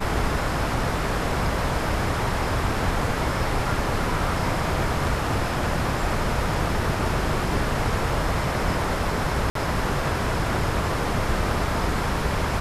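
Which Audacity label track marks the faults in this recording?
9.500000	9.550000	drop-out 53 ms

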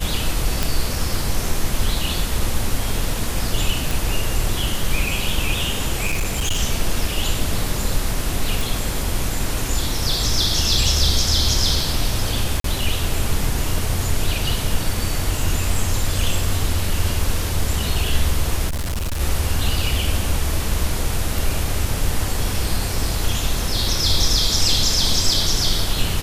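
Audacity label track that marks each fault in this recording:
0.630000	0.630000	click
3.910000	3.910000	click
6.060000	6.600000	clipping −16 dBFS
8.610000	8.610000	click
12.600000	12.640000	drop-out 43 ms
18.670000	19.210000	clipping −20.5 dBFS

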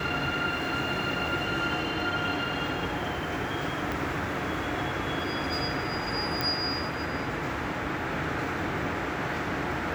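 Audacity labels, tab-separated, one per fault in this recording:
3.920000	3.920000	click
6.410000	6.410000	click −12 dBFS

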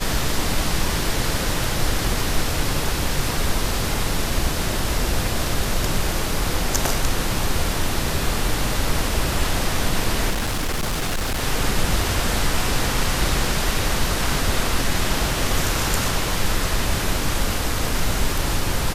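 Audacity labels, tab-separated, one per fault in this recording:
10.300000	11.440000	clipping −19.5 dBFS

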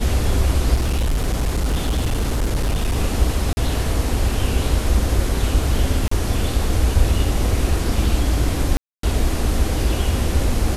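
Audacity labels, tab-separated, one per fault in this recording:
0.740000	2.960000	clipping −15.5 dBFS
3.530000	3.570000	drop-out 40 ms
6.080000	6.110000	drop-out 34 ms
8.770000	9.030000	drop-out 263 ms

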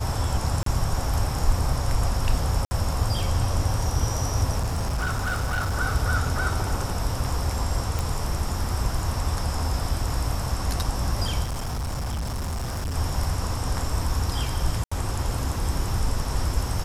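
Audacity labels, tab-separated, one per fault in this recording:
0.630000	0.660000	drop-out 33 ms
2.650000	2.710000	drop-out 60 ms
4.590000	5.750000	clipping −21.5 dBFS
7.990000	7.990000	click
11.430000	12.960000	clipping −25.5 dBFS
14.840000	14.910000	drop-out 75 ms

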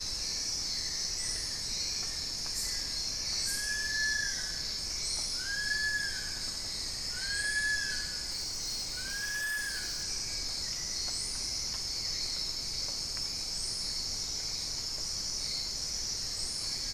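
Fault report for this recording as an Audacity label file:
8.300000	10.040000	clipping −31.5 dBFS

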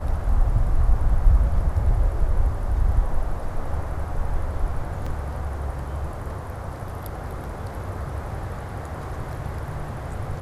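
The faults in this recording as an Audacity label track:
5.060000	5.060000	drop-out 4.6 ms

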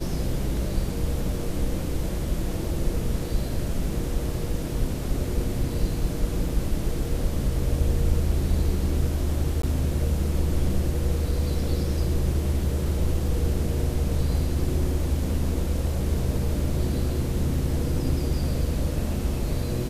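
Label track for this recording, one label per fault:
6.490000	6.490000	drop-out 3.2 ms
9.620000	9.630000	drop-out 14 ms

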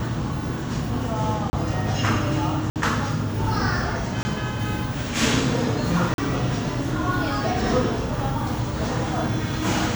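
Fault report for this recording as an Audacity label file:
1.500000	1.530000	drop-out 30 ms
2.700000	2.760000	drop-out 58 ms
4.230000	4.250000	drop-out 20 ms
6.140000	6.180000	drop-out 42 ms

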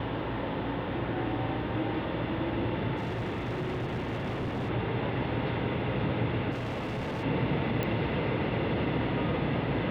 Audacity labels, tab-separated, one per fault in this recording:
2.960000	4.700000	clipping −29 dBFS
6.510000	7.240000	clipping −30.5 dBFS
7.830000	7.830000	click −18 dBFS

